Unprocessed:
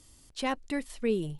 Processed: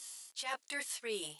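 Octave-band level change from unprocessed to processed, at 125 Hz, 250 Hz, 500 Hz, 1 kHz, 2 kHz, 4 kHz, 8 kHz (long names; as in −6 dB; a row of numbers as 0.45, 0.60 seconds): below −20 dB, −20.0 dB, −11.0 dB, −7.5 dB, −1.0 dB, +0.5 dB, +6.5 dB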